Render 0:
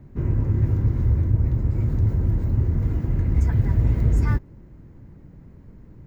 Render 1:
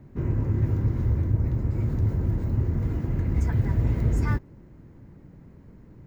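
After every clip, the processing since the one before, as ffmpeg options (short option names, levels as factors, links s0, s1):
-af "lowshelf=f=92:g=-7.5"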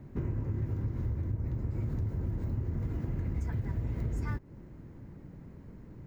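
-af "acompressor=threshold=0.0316:ratio=6"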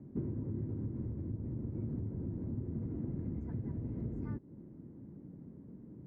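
-af "bandpass=f=250:t=q:w=1.3:csg=0,volume=1.26"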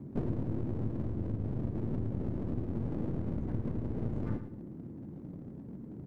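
-filter_complex "[0:a]aeval=exprs='clip(val(0),-1,0.00447)':c=same,asplit=2[s0][s1];[s1]aecho=0:1:110|220|330:0.316|0.0885|0.0248[s2];[s0][s2]amix=inputs=2:normalize=0,volume=2.11"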